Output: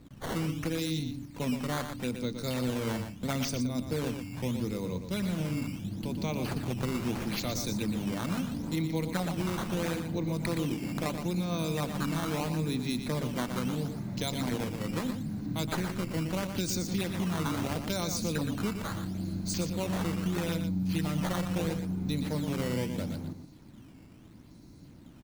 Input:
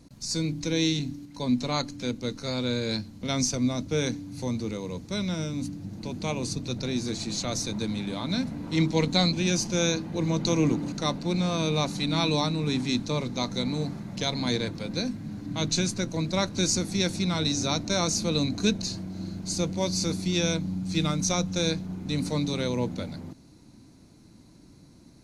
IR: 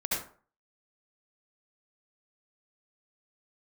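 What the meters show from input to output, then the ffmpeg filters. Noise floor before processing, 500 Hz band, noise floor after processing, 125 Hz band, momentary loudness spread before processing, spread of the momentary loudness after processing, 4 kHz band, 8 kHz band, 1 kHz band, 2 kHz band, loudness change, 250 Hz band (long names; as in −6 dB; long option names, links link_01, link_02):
−53 dBFS, −5.0 dB, −52 dBFS, −3.0 dB, 8 LU, 4 LU, −10.0 dB, −9.0 dB, −3.5 dB, −4.0 dB, −4.5 dB, −3.5 dB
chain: -filter_complex "[0:a]lowshelf=frequency=370:gain=4,acompressor=threshold=-26dB:ratio=6,acrusher=samples=10:mix=1:aa=0.000001:lfo=1:lforange=16:lforate=0.76,asplit=2[link_01][link_02];[link_02]aecho=0:1:119:0.398[link_03];[link_01][link_03]amix=inputs=2:normalize=0,volume=-2.5dB"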